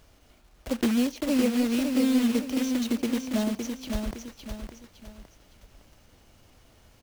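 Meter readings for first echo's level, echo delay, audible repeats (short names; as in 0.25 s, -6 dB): -5.5 dB, 0.561 s, 3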